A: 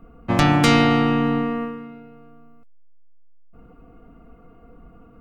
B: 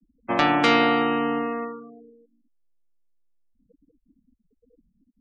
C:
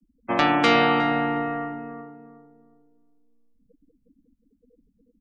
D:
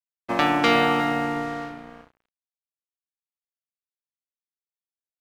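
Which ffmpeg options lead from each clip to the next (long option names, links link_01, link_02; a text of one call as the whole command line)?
ffmpeg -i in.wav -filter_complex "[0:a]afftfilt=real='re*gte(hypot(re,im),0.0251)':imag='im*gte(hypot(re,im),0.0251)':win_size=1024:overlap=0.75,acrossover=split=270 4400:gain=0.0891 1 0.141[link_01][link_02][link_03];[link_01][link_02][link_03]amix=inputs=3:normalize=0" out.wav
ffmpeg -i in.wav -filter_complex "[0:a]asplit=2[link_01][link_02];[link_02]adelay=361,lowpass=frequency=820:poles=1,volume=-5dB,asplit=2[link_03][link_04];[link_04]adelay=361,lowpass=frequency=820:poles=1,volume=0.37,asplit=2[link_05][link_06];[link_06]adelay=361,lowpass=frequency=820:poles=1,volume=0.37,asplit=2[link_07][link_08];[link_08]adelay=361,lowpass=frequency=820:poles=1,volume=0.37,asplit=2[link_09][link_10];[link_10]adelay=361,lowpass=frequency=820:poles=1,volume=0.37[link_11];[link_01][link_03][link_05][link_07][link_09][link_11]amix=inputs=6:normalize=0" out.wav
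ffmpeg -i in.wav -af "aeval=exprs='sgn(val(0))*max(abs(val(0))-0.0126,0)':channel_layout=same" out.wav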